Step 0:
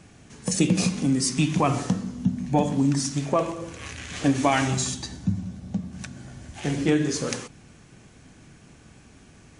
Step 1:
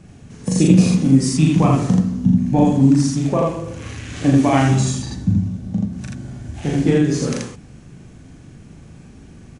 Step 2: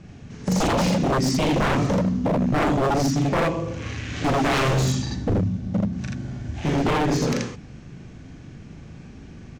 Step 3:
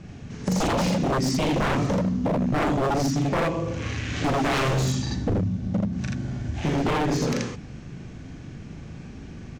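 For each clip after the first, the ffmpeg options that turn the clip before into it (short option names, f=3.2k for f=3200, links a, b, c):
-filter_complex "[0:a]lowshelf=f=470:g=10.5,asplit=2[a][b];[b]aecho=0:1:37.9|81.63:0.794|0.891[c];[a][c]amix=inputs=2:normalize=0,volume=-3dB"
-af "lowpass=f=6.3k:w=0.5412,lowpass=f=6.3k:w=1.3066,equalizer=f=2.1k:w=1.5:g=2,aeval=exprs='0.168*(abs(mod(val(0)/0.168+3,4)-2)-1)':c=same"
-af "acompressor=threshold=-26dB:ratio=2,volume=2dB"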